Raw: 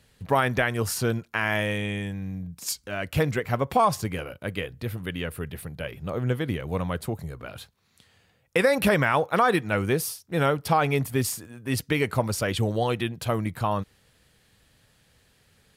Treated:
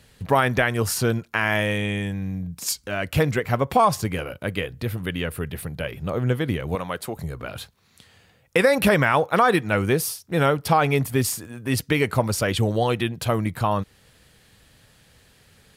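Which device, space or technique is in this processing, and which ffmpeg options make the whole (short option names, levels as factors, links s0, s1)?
parallel compression: -filter_complex "[0:a]asettb=1/sr,asplit=3[s0][s1][s2];[s0]atrim=end=6.754[s3];[s1]atrim=start=6.75:end=7.17,asetpts=PTS-STARTPTS,afade=t=in:d=0.004:c=qsin,afade=t=out:st=0.416:d=0.004:c=qsin,highpass=f=480:p=1[s4];[s2]atrim=start=7.166[s5];[s3][s4]acrossfade=d=0.004:c1=hsin:c2=qsin[s6];[s6][s5]acrossfade=d=0.004:c1=qsin:c2=hsin,asplit=2[s7][s8];[s8]acompressor=threshold=0.0141:ratio=6,volume=0.596[s9];[s7][s9]amix=inputs=2:normalize=0,volume=1.33"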